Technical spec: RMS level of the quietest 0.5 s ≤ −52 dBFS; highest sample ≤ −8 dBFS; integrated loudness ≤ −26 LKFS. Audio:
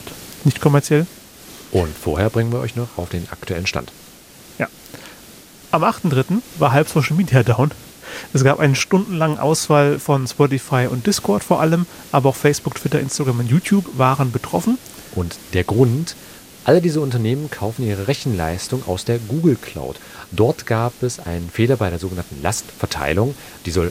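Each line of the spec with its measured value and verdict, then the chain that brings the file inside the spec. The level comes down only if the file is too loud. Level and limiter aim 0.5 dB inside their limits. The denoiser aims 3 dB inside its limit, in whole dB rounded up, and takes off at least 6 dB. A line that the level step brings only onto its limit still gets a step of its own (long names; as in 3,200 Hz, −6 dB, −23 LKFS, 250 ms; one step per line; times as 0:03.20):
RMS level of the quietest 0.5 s −43 dBFS: out of spec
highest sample −1.5 dBFS: out of spec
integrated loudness −19.0 LKFS: out of spec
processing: broadband denoise 6 dB, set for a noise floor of −43 dBFS
level −7.5 dB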